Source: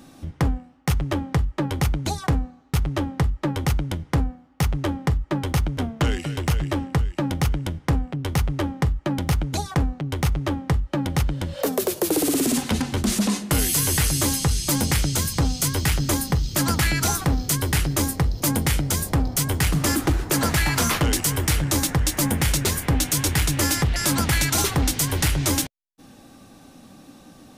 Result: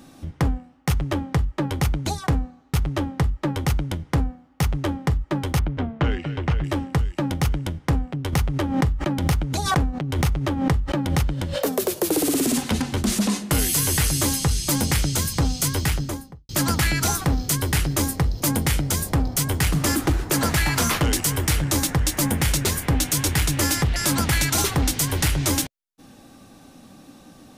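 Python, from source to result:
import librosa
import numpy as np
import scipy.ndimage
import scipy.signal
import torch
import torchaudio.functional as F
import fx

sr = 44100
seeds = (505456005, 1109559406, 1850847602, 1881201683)

y = fx.lowpass(x, sr, hz=2700.0, slope=12, at=(5.59, 6.64))
y = fx.pre_swell(y, sr, db_per_s=60.0, at=(8.32, 11.58), fade=0.02)
y = fx.studio_fade_out(y, sr, start_s=15.76, length_s=0.73)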